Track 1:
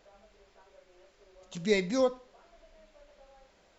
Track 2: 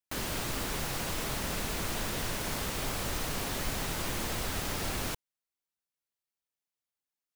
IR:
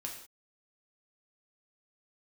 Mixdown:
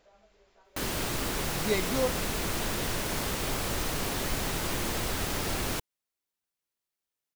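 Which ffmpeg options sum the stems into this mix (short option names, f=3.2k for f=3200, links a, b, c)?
-filter_complex "[0:a]volume=-2.5dB[a];[1:a]equalizer=f=370:t=o:w=0.77:g=2.5,adelay=650,volume=2.5dB[b];[a][b]amix=inputs=2:normalize=0"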